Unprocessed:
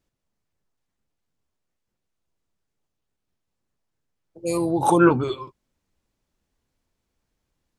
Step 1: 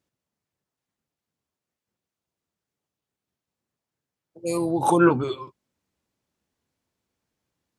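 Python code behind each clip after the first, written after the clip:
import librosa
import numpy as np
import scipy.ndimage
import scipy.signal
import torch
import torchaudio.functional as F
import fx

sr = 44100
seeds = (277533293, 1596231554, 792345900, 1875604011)

y = scipy.signal.sosfilt(scipy.signal.butter(2, 94.0, 'highpass', fs=sr, output='sos'), x)
y = y * 10.0 ** (-1.5 / 20.0)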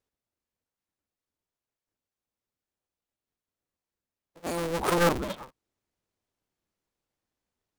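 y = fx.cycle_switch(x, sr, every=2, mode='inverted')
y = y * 10.0 ** (-6.0 / 20.0)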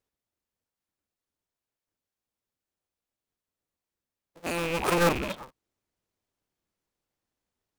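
y = fx.rattle_buzz(x, sr, strikes_db=-38.0, level_db=-23.0)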